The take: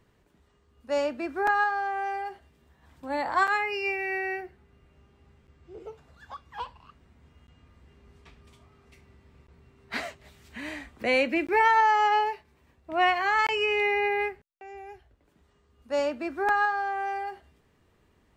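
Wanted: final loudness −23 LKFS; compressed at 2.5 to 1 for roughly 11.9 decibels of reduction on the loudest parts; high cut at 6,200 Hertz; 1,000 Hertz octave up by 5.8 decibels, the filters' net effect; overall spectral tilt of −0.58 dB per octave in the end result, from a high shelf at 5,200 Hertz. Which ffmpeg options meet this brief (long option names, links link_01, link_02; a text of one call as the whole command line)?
ffmpeg -i in.wav -af "lowpass=6200,equalizer=frequency=1000:width_type=o:gain=7,highshelf=frequency=5200:gain=9,acompressor=threshold=-31dB:ratio=2.5,volume=8.5dB" out.wav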